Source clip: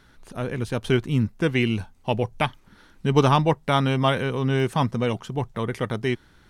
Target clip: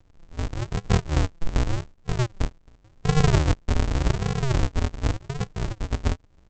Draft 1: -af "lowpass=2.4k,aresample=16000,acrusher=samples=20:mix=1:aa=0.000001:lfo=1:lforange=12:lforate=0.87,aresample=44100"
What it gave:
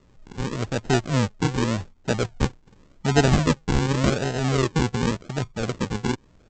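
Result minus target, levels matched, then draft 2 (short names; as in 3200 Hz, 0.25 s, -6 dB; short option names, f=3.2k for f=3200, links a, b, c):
decimation with a swept rate: distortion -36 dB
-af "lowpass=2.4k,aresample=16000,acrusher=samples=74:mix=1:aa=0.000001:lfo=1:lforange=44.4:lforate=0.87,aresample=44100"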